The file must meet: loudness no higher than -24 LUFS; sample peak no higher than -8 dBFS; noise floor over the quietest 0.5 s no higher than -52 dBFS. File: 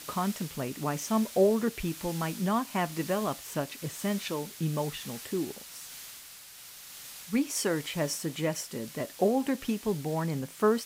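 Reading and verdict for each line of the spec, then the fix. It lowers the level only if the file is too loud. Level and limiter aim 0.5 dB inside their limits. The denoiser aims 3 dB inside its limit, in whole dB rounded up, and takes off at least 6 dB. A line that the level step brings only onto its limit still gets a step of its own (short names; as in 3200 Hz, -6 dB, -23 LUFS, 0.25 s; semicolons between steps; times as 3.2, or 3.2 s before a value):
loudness -31.0 LUFS: OK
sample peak -13.5 dBFS: OK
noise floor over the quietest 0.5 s -49 dBFS: fail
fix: denoiser 6 dB, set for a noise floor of -49 dBFS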